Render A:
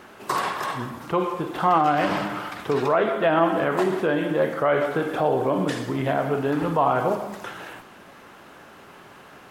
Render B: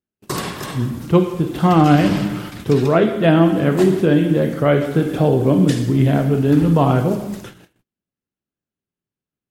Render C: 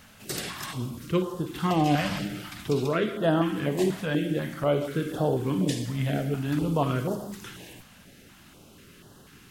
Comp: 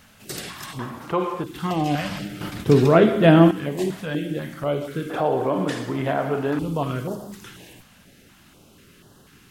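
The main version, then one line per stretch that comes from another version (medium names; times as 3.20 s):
C
0.79–1.44 s: from A
2.41–3.51 s: from B
5.10–6.59 s: from A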